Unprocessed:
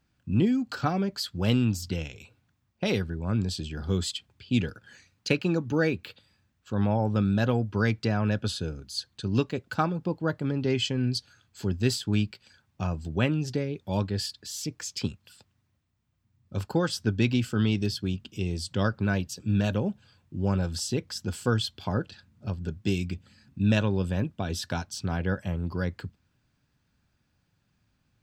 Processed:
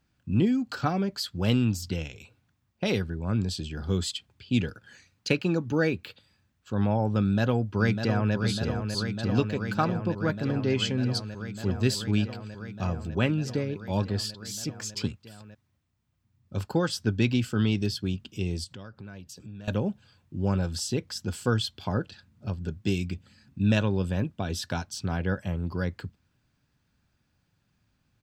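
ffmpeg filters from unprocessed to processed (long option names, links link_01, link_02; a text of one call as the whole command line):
ffmpeg -i in.wav -filter_complex "[0:a]asplit=2[link_01][link_02];[link_02]afade=type=in:start_time=7.2:duration=0.01,afade=type=out:start_time=8.34:duration=0.01,aecho=0:1:600|1200|1800|2400|3000|3600|4200|4800|5400|6000|6600|7200:0.446684|0.379681|0.322729|0.27432|0.233172|0.198196|0.168467|0.143197|0.121717|0.103459|0.0879406|0.0747495[link_03];[link_01][link_03]amix=inputs=2:normalize=0,asettb=1/sr,asplit=3[link_04][link_05][link_06];[link_04]atrim=end=18.644[link_07];[link_05]atrim=start=18.64:end=19.68,asetpts=PTS-STARTPTS,afade=type=in:duration=0.004:curve=qsin,afade=type=out:start_time=1.036:duration=0.004:curve=qsin,acompressor=threshold=-42dB:ratio=4:attack=3.2:release=140:knee=1:detection=peak[link_08];[link_06]atrim=start=19.676[link_09];[link_07][link_08]acrossfade=duration=0.004:curve1=hsin:curve2=qsin[link_10];[link_10][link_09]acrossfade=duration=0.004:curve1=qsin:curve2=hsin" out.wav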